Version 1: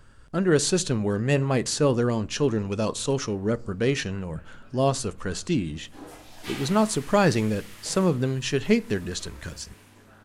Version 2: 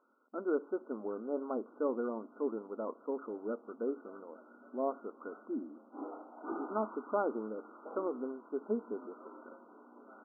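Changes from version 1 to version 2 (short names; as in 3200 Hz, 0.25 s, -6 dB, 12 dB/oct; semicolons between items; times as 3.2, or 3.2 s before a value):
speech -11.0 dB; master: add brick-wall FIR band-pass 220–1500 Hz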